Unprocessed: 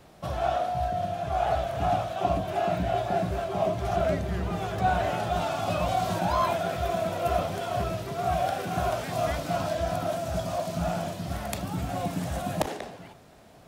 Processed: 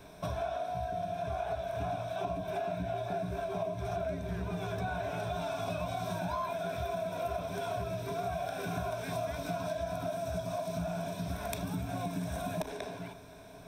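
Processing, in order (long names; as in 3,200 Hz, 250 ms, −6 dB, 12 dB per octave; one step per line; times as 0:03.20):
EQ curve with evenly spaced ripples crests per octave 1.6, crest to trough 11 dB
downward compressor, threshold −33 dBFS, peak gain reduction 15.5 dB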